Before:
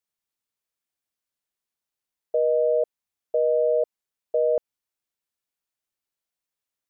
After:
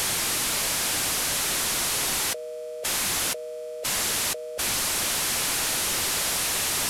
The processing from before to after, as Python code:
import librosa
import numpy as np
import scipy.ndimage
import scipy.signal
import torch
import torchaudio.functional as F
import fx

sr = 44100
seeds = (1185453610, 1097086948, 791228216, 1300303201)

y = fx.delta_mod(x, sr, bps=64000, step_db=-28.5)
y = fx.over_compress(y, sr, threshold_db=-33.0, ratio=-1.0)
y = y * librosa.db_to_amplitude(5.5)